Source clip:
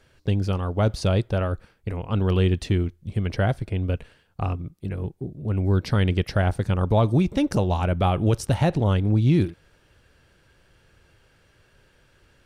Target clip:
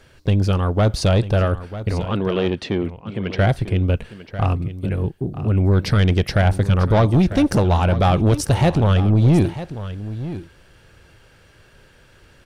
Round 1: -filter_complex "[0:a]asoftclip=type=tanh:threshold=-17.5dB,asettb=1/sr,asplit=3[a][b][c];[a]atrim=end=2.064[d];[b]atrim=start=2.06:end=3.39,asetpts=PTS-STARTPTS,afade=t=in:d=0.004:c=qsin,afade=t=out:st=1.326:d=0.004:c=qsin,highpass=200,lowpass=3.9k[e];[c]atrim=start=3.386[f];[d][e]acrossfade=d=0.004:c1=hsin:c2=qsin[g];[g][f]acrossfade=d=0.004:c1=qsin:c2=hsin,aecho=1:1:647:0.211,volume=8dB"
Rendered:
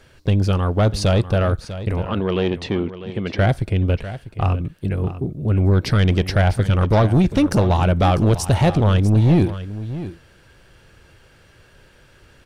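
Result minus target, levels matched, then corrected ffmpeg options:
echo 0.298 s early
-filter_complex "[0:a]asoftclip=type=tanh:threshold=-17.5dB,asettb=1/sr,asplit=3[a][b][c];[a]atrim=end=2.064[d];[b]atrim=start=2.06:end=3.39,asetpts=PTS-STARTPTS,afade=t=in:d=0.004:c=qsin,afade=t=out:st=1.326:d=0.004:c=qsin,highpass=200,lowpass=3.9k[e];[c]atrim=start=3.386[f];[d][e]acrossfade=d=0.004:c1=hsin:c2=qsin[g];[g][f]acrossfade=d=0.004:c1=qsin:c2=hsin,aecho=1:1:945:0.211,volume=8dB"

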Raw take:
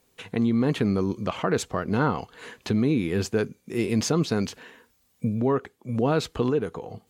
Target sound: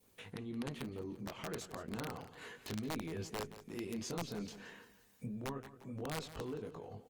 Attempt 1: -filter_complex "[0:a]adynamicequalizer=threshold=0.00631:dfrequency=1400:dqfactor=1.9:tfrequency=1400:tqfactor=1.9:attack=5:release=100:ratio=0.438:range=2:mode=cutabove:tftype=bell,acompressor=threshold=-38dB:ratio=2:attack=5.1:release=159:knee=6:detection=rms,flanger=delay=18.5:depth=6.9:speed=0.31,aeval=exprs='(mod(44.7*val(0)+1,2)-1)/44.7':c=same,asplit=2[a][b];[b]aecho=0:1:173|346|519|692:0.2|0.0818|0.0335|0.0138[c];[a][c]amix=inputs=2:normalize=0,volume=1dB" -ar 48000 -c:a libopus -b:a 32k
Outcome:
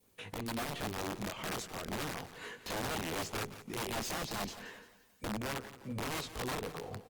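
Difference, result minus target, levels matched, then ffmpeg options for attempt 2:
compressor: peak gain reduction -5.5 dB
-filter_complex "[0:a]adynamicequalizer=threshold=0.00631:dfrequency=1400:dqfactor=1.9:tfrequency=1400:tqfactor=1.9:attack=5:release=100:ratio=0.438:range=2:mode=cutabove:tftype=bell,acompressor=threshold=-49dB:ratio=2:attack=5.1:release=159:knee=6:detection=rms,flanger=delay=18.5:depth=6.9:speed=0.31,aeval=exprs='(mod(44.7*val(0)+1,2)-1)/44.7':c=same,asplit=2[a][b];[b]aecho=0:1:173|346|519|692:0.2|0.0818|0.0335|0.0138[c];[a][c]amix=inputs=2:normalize=0,volume=1dB" -ar 48000 -c:a libopus -b:a 32k

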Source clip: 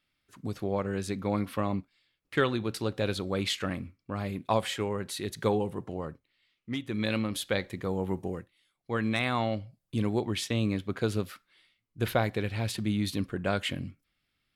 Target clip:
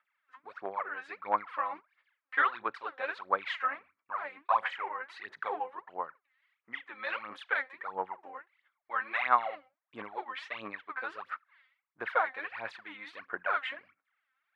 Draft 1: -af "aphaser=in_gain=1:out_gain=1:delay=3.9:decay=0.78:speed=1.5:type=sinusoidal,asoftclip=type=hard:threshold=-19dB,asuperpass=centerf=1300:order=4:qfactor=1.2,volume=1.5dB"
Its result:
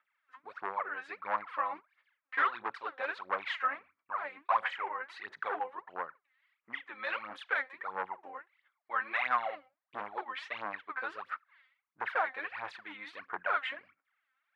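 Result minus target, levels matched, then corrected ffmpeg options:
hard clip: distortion +26 dB
-af "aphaser=in_gain=1:out_gain=1:delay=3.9:decay=0.78:speed=1.5:type=sinusoidal,asoftclip=type=hard:threshold=-7.5dB,asuperpass=centerf=1300:order=4:qfactor=1.2,volume=1.5dB"

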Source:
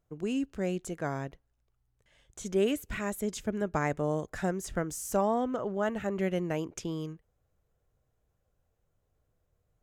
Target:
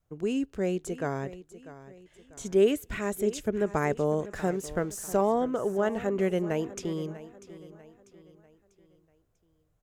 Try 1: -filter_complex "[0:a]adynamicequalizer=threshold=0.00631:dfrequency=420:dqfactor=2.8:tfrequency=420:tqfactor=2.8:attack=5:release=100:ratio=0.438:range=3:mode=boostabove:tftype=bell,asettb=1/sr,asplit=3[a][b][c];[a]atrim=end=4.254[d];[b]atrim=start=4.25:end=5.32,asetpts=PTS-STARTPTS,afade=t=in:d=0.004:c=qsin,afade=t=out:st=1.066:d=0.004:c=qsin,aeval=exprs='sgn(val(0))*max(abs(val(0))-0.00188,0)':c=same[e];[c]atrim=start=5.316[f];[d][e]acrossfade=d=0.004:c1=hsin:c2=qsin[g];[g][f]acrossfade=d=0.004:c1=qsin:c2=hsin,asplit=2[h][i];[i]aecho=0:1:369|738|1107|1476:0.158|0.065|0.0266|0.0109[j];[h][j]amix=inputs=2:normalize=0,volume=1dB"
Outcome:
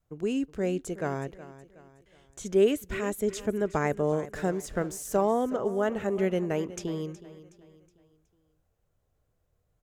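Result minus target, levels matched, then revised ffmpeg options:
echo 0.275 s early
-filter_complex "[0:a]adynamicequalizer=threshold=0.00631:dfrequency=420:dqfactor=2.8:tfrequency=420:tqfactor=2.8:attack=5:release=100:ratio=0.438:range=3:mode=boostabove:tftype=bell,asettb=1/sr,asplit=3[a][b][c];[a]atrim=end=4.254[d];[b]atrim=start=4.25:end=5.32,asetpts=PTS-STARTPTS,afade=t=in:d=0.004:c=qsin,afade=t=out:st=1.066:d=0.004:c=qsin,aeval=exprs='sgn(val(0))*max(abs(val(0))-0.00188,0)':c=same[e];[c]atrim=start=5.316[f];[d][e]acrossfade=d=0.004:c1=hsin:c2=qsin[g];[g][f]acrossfade=d=0.004:c1=qsin:c2=hsin,asplit=2[h][i];[i]aecho=0:1:644|1288|1932|2576:0.158|0.065|0.0266|0.0109[j];[h][j]amix=inputs=2:normalize=0,volume=1dB"

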